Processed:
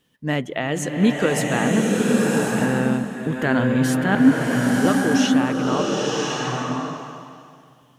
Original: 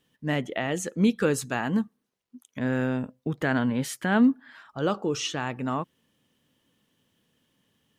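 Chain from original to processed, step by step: 4.15–4.85 s: formants replaced by sine waves; swelling reverb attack 1070 ms, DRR -2 dB; trim +4 dB

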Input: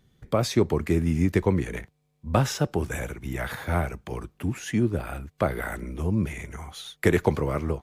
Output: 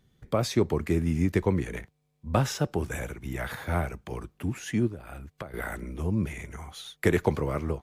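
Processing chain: 4.87–5.54 s: compression 20:1, threshold -33 dBFS, peak gain reduction 16.5 dB; trim -2.5 dB

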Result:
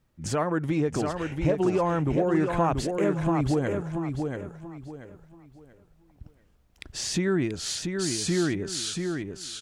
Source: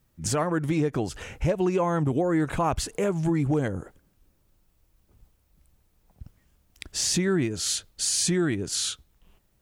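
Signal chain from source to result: low-pass 3.4 kHz 6 dB/octave; peaking EQ 64 Hz -3 dB 2.8 oct; on a send: feedback delay 684 ms, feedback 29%, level -5 dB

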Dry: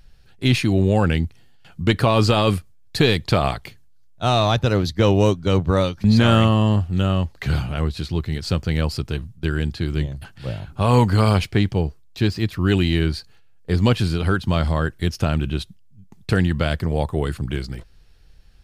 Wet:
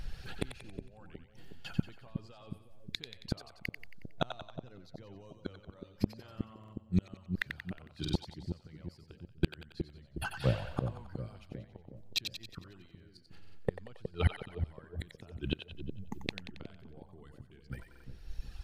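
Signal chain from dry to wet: reverb removal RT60 1.6 s; tremolo triangle 0.83 Hz, depth 85%; peak limiter -20 dBFS, peak gain reduction 11.5 dB; inverted gate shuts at -28 dBFS, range -38 dB; treble shelf 5.1 kHz -5.5 dB; on a send: two-band feedback delay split 590 Hz, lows 365 ms, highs 91 ms, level -7 dB; on the sum: buffer glitch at 6.59/8.00/13.41/17.90 s, samples 2048, times 2; trim +13 dB

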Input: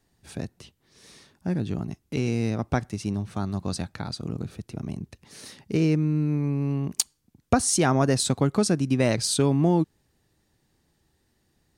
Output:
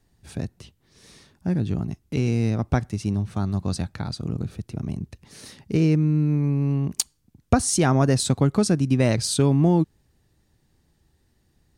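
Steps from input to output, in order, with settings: bass shelf 140 Hz +9 dB

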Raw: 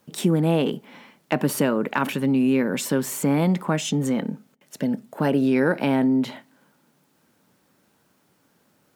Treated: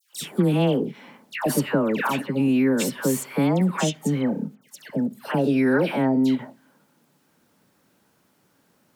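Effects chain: phase dispersion lows, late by 144 ms, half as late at 1.4 kHz; endings held to a fixed fall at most 380 dB/s

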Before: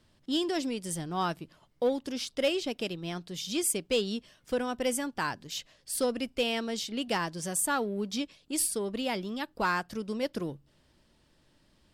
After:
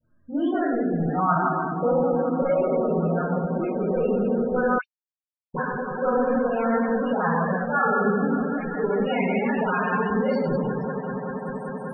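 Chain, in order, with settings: spectral noise reduction 14 dB; hum notches 50/100/150/200/250/300/350/400 Hz; 1.99–2.50 s: bass shelf 420 Hz +3.5 dB; reverberation RT60 1.6 s, pre-delay 13 ms, DRR -8 dB; peak limiter -17 dBFS, peak gain reduction 11 dB; echo with a slow build-up 194 ms, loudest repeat 5, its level -15 dB; low-pass sweep 1.5 kHz -> 10 kHz, 8.37–11.82 s; 4.78–5.54 s: mute; phase dispersion highs, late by 85 ms, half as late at 1.6 kHz; loudest bins only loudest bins 32; treble shelf 3.6 kHz -10.5 dB; trim +1.5 dB

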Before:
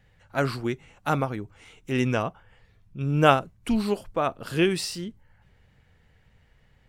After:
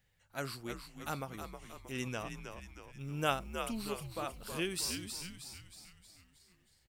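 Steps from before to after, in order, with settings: pre-emphasis filter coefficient 0.8; 2.98–5.01 s: added noise white -75 dBFS; frequency-shifting echo 315 ms, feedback 52%, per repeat -89 Hz, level -7 dB; trim -2 dB

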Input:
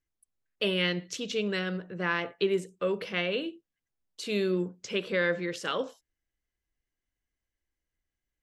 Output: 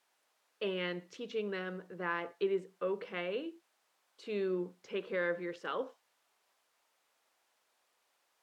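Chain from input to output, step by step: peaking EQ 630 Hz -7.5 dB 0.67 oct; added noise blue -55 dBFS; band-pass filter 680 Hz, Q 1

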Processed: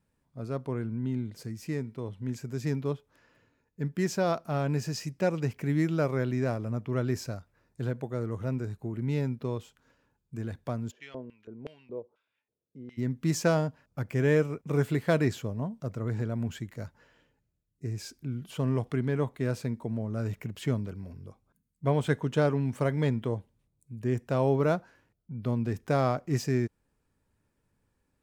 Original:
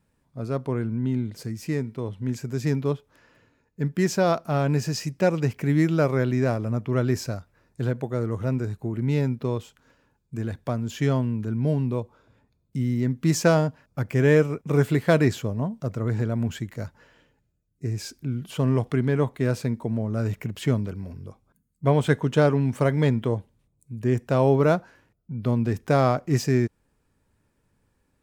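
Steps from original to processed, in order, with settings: 10.90–12.97 s: LFO band-pass square 4 Hz -> 1 Hz 460–2700 Hz; trim -6 dB

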